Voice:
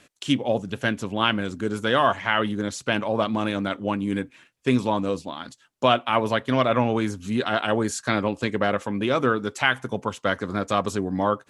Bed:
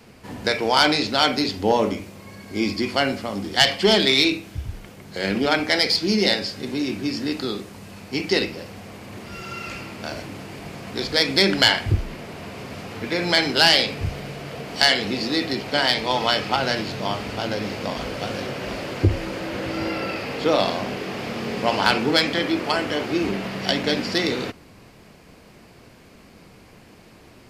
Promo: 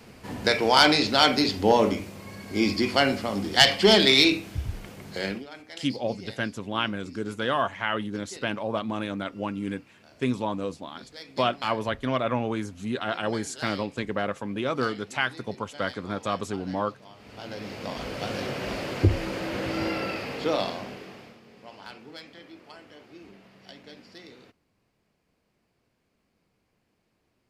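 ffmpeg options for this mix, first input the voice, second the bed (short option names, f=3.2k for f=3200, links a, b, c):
-filter_complex "[0:a]adelay=5550,volume=-5.5dB[a];[1:a]volume=21.5dB,afade=t=out:st=5.08:d=0.37:silence=0.0668344,afade=t=in:st=17.15:d=1.34:silence=0.0794328,afade=t=out:st=19.84:d=1.56:silence=0.0707946[b];[a][b]amix=inputs=2:normalize=0"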